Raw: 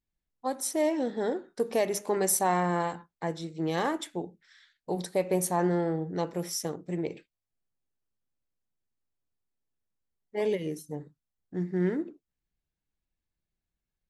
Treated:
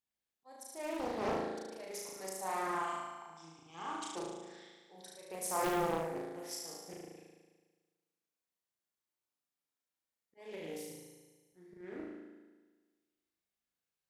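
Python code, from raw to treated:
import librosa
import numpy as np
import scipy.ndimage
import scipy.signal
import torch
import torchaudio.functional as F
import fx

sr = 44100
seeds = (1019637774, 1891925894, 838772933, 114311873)

y = fx.highpass(x, sr, hz=620.0, slope=6)
y = fx.auto_swell(y, sr, attack_ms=510.0)
y = fx.fixed_phaser(y, sr, hz=2700.0, stages=8, at=(2.67, 4.15))
y = fx.room_flutter(y, sr, wall_m=6.3, rt60_s=1.4)
y = fx.doppler_dist(y, sr, depth_ms=0.68)
y = y * librosa.db_to_amplitude(-4.0)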